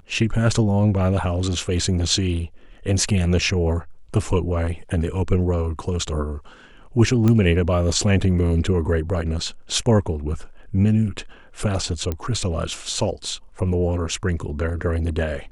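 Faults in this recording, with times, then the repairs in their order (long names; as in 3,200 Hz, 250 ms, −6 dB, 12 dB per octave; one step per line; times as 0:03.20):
0:07.28: click −9 dBFS
0:12.12: click −12 dBFS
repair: click removal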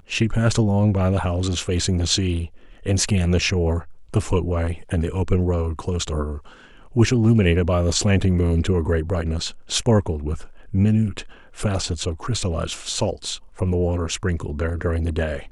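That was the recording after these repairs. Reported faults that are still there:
none of them is left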